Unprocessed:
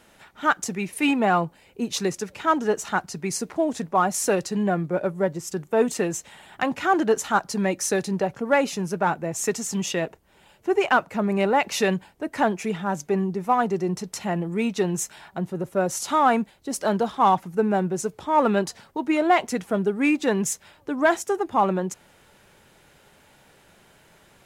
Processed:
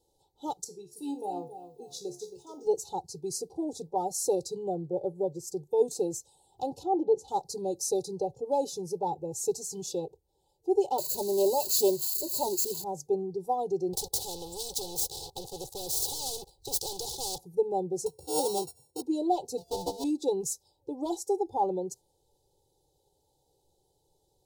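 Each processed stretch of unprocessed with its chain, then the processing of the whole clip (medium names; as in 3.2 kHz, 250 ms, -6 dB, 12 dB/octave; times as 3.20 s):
0.64–2.67 s: feedback comb 71 Hz, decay 0.33 s, mix 80% + bit-crushed delay 272 ms, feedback 35%, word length 9-bit, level -10 dB
6.83–7.28 s: low-pass 1.3 kHz 6 dB/octave + de-hum 275.6 Hz, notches 3
10.98–12.84 s: zero-crossing glitches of -17 dBFS + rippled EQ curve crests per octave 1.4, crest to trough 13 dB + loudspeaker Doppler distortion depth 0.13 ms
13.93–17.38 s: median filter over 3 samples + waveshaping leveller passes 3 + spectrum-flattening compressor 4:1
18.06–19.02 s: sorted samples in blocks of 32 samples + high-pass 55 Hz + doubling 14 ms -12 dB
19.57–20.04 s: sorted samples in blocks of 64 samples + treble shelf 6.8 kHz -7.5 dB + loudspeaker Doppler distortion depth 0.57 ms
whole clip: spectral noise reduction 9 dB; elliptic band-stop 790–4000 Hz, stop band 80 dB; comb 2.3 ms, depth 100%; trim -8 dB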